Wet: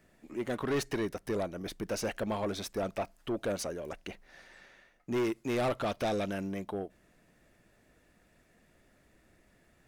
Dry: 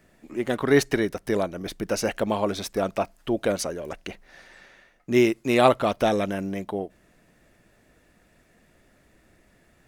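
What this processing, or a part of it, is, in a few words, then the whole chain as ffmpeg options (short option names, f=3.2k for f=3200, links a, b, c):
saturation between pre-emphasis and de-emphasis: -filter_complex "[0:a]asettb=1/sr,asplit=3[a][b][c];[a]atrim=end=5.784[d];[b]atrim=start=5.78:end=6.48,asetpts=PTS-STARTPTS,afade=t=in:d=0.004:c=qsin,afade=t=out:st=0.696:d=0.004:c=qsin,equalizer=f=3.8k:t=o:w=1.9:g=4[e];[c]atrim=start=6.476[f];[d][e]acrossfade=d=0.004:c1=hsin:c2=qsin[g];[g][f]acrossfade=d=0.004:c1=qsin:c2=hsin,highshelf=f=3.6k:g=7,asoftclip=type=tanh:threshold=-20.5dB,highshelf=f=3.6k:g=-7,volume=-5.5dB"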